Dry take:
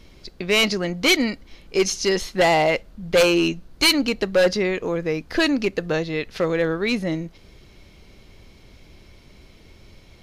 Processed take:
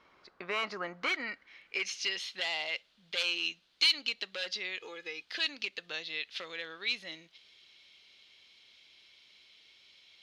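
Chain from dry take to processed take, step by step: 4.80–5.25 s: comb 2.4 ms, depth 92%; compression 5:1, threshold -20 dBFS, peak gain reduction 6.5 dB; band-pass sweep 1.2 kHz -> 3.4 kHz, 0.86–2.37 s; trim +1.5 dB

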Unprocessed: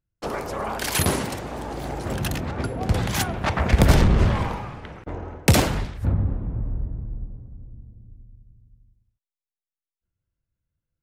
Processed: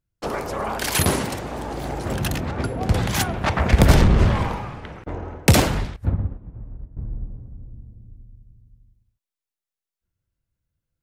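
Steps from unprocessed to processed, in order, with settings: 5.96–6.97 s: upward expansion 2.5:1, over -29 dBFS; trim +2 dB

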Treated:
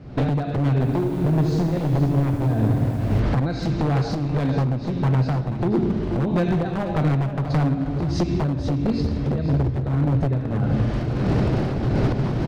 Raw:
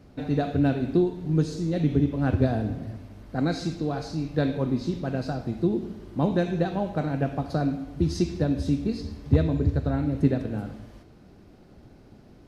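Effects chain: recorder AGC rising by 34 dB/s; Bessel low-pass 3.5 kHz, order 2; peaking EQ 130 Hz +12.5 dB 0.33 oct; compression 8:1, threshold -23 dBFS, peak gain reduction 15 dB; wavefolder -22.5 dBFS; tremolo triangle 1.6 Hz, depth 50%; delay 483 ms -11.5 dB; reverberation RT60 2.9 s, pre-delay 13 ms, DRR 16 dB; 0.73–3.20 s: bit-crushed delay 81 ms, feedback 80%, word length 9-bit, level -10 dB; trim +9 dB

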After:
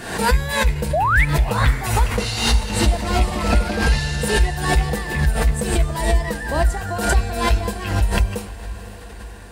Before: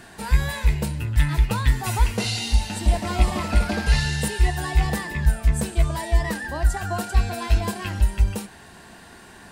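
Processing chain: peaking EQ 490 Hz +8 dB 0.27 oct; painted sound rise, 0.93–1.25 s, 560–2400 Hz -18 dBFS; echo that smears into a reverb 526 ms, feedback 58%, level -12.5 dB; swell ahead of each attack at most 71 dB/s

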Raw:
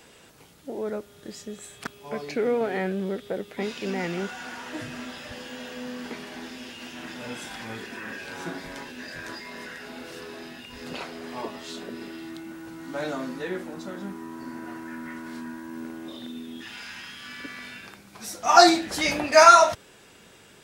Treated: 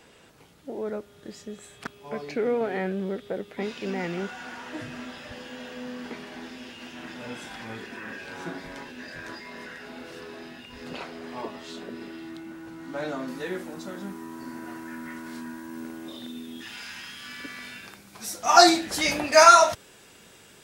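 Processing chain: treble shelf 5.1 kHz -6.5 dB, from 13.28 s +5 dB; trim -1 dB

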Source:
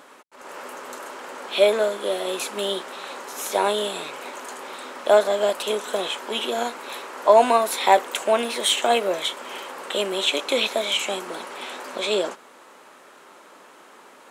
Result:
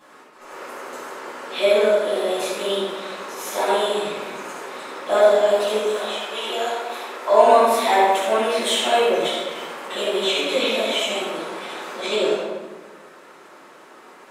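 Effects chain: 5.86–7.48 s: high-pass 700 Hz -> 240 Hz 12 dB/octave; simulated room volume 980 m³, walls mixed, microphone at 9.2 m; trim -12.5 dB

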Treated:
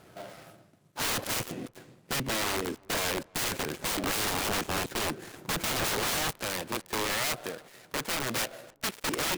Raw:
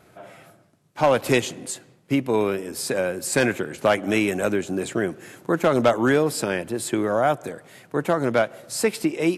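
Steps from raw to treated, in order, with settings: dead-time distortion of 0.19 ms; 6.39–9.03 s: bass shelf 440 Hz -8.5 dB; integer overflow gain 24 dB; filtered feedback delay 287 ms, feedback 37%, low-pass 800 Hz, level -23.5 dB

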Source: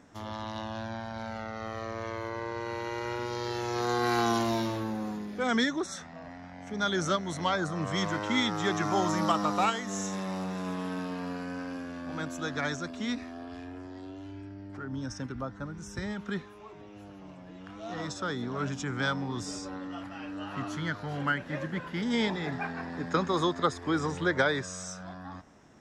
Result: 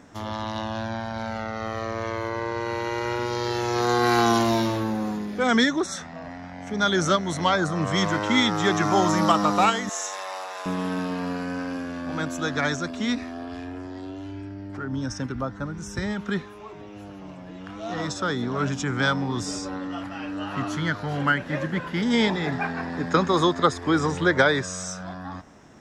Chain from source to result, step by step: 9.89–10.66 s: high-pass 600 Hz 24 dB/octave; trim +7 dB

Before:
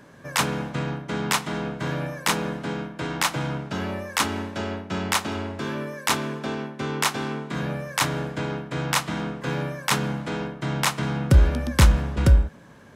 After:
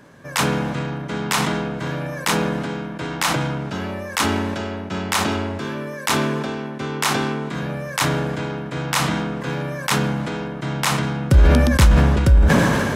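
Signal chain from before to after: decay stretcher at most 23 dB/s; trim +1.5 dB

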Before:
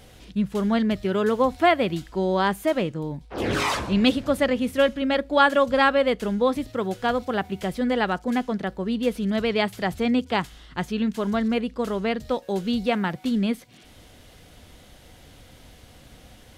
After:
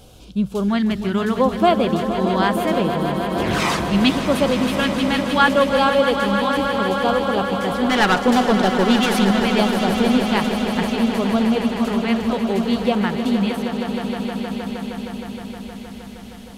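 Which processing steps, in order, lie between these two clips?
7.89–9.31 s: overdrive pedal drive 23 dB, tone 5.9 kHz, clips at -10.5 dBFS; LFO notch square 0.73 Hz 520–1900 Hz; echo with a slow build-up 156 ms, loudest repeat 5, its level -11 dB; trim +3.5 dB

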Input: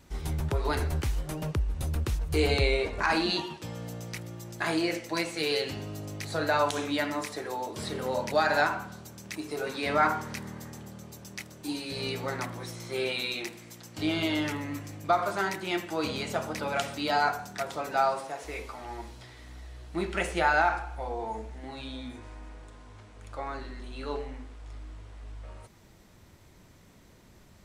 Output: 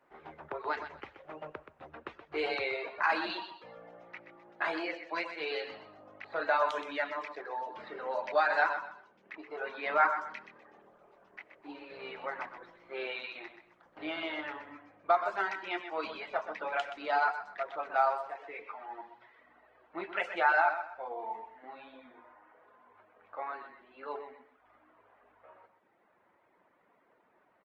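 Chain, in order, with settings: band-pass 590–2500 Hz; reverb removal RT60 1.1 s; level-controlled noise filter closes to 1.6 kHz, open at -26 dBFS; feedback delay 126 ms, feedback 28%, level -10 dB; on a send at -20 dB: reverberation, pre-delay 3 ms; on the sum: wow and flutter 20 cents; Opus 20 kbps 48 kHz

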